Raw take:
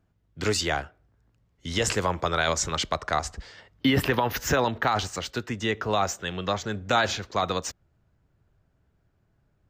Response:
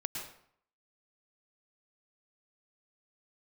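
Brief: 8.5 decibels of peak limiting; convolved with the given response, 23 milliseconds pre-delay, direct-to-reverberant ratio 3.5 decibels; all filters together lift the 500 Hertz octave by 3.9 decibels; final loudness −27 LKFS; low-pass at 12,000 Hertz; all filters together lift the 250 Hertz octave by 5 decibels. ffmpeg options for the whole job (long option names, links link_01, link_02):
-filter_complex "[0:a]lowpass=12000,equalizer=frequency=250:width_type=o:gain=5,equalizer=frequency=500:width_type=o:gain=3.5,alimiter=limit=-16.5dB:level=0:latency=1,asplit=2[link_01][link_02];[1:a]atrim=start_sample=2205,adelay=23[link_03];[link_02][link_03]afir=irnorm=-1:irlink=0,volume=-5dB[link_04];[link_01][link_04]amix=inputs=2:normalize=0"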